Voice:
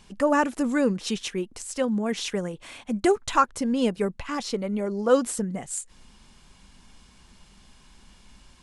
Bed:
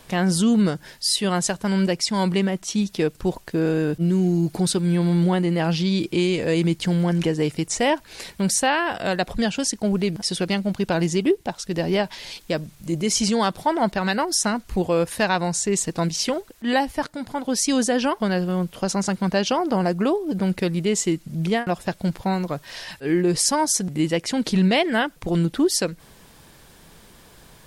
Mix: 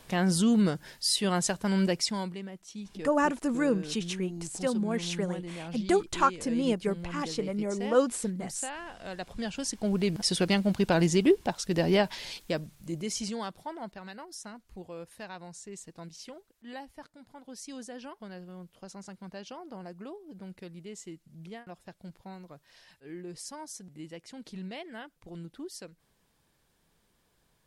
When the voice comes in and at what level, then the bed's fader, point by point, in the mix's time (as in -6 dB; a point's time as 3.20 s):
2.85 s, -4.0 dB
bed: 2.06 s -5.5 dB
2.36 s -19 dB
8.90 s -19 dB
10.24 s -2.5 dB
12.13 s -2.5 dB
14.11 s -22 dB